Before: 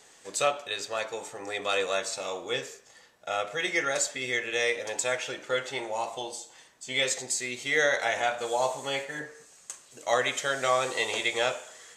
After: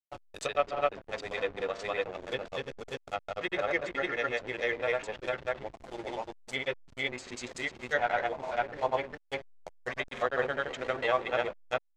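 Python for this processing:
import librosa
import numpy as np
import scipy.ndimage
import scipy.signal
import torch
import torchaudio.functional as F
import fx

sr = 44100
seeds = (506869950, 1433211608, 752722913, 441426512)

y = fx.granulator(x, sr, seeds[0], grain_ms=100.0, per_s=20.0, spray_ms=413.0, spread_st=0)
y = fx.backlash(y, sr, play_db=-31.5)
y = fx.env_lowpass_down(y, sr, base_hz=2600.0, full_db=-29.0)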